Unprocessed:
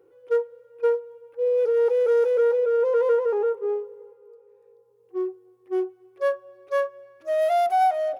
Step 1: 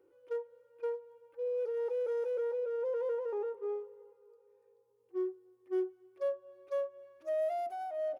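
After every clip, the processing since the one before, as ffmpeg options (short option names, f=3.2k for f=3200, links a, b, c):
-filter_complex "[0:a]acrossover=split=570[a][b];[b]acompressor=threshold=-35dB:ratio=6[c];[a][c]amix=inputs=2:normalize=0,aecho=1:1:3.3:0.42,volume=-8.5dB"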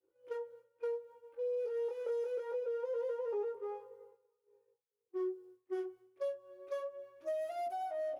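-filter_complex "[0:a]flanger=delay=15.5:depth=7.8:speed=0.25,agate=range=-33dB:threshold=-59dB:ratio=3:detection=peak,acrossover=split=250|3000[a][b][c];[b]acompressor=threshold=-42dB:ratio=6[d];[a][d][c]amix=inputs=3:normalize=0,volume=6dB"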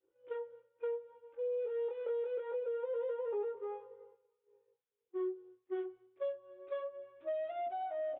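-af "aresample=8000,aresample=44100"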